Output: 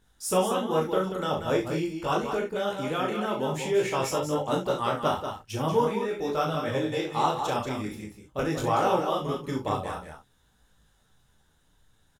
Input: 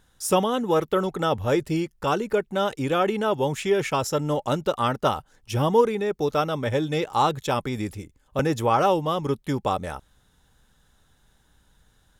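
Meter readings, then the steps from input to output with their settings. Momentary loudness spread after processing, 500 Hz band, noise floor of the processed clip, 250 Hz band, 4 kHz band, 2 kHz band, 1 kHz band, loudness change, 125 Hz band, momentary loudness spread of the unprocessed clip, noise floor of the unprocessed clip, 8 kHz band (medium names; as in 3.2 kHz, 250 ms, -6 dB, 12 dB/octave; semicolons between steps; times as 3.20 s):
7 LU, -3.5 dB, -66 dBFS, -3.5 dB, -3.0 dB, -3.0 dB, -3.0 dB, -3.5 dB, -5.0 dB, 7 LU, -63 dBFS, -2.0 dB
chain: loudspeakers at several distances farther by 13 m -5 dB, 24 m -10 dB, 64 m -7 dB, 77 m -11 dB; harmonic-percussive split percussive +4 dB; detune thickener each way 16 cents; trim -4 dB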